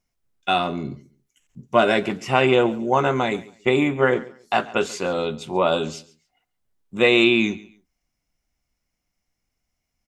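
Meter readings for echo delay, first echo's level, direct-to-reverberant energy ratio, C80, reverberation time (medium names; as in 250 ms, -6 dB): 139 ms, -20.0 dB, no reverb, no reverb, no reverb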